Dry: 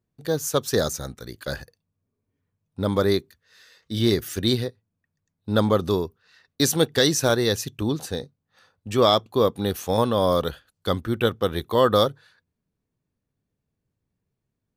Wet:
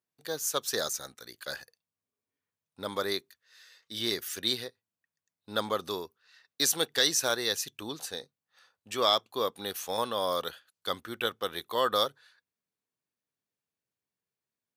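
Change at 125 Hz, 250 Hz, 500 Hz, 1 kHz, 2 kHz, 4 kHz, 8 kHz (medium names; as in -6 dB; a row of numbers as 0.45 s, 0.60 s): -22.5 dB, -16.0 dB, -11.0 dB, -6.0 dB, -4.0 dB, -2.5 dB, -2.0 dB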